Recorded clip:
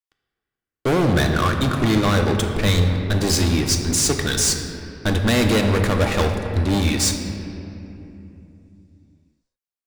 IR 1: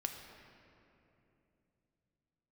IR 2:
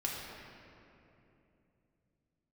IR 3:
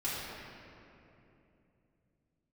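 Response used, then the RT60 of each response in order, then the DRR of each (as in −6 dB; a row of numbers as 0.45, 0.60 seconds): 1; 2.9, 2.9, 2.9 seconds; 3.0, −4.5, −11.0 decibels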